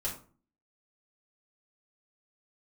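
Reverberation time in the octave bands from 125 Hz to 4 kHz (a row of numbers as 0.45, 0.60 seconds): 0.60, 0.60, 0.45, 0.40, 0.30, 0.25 seconds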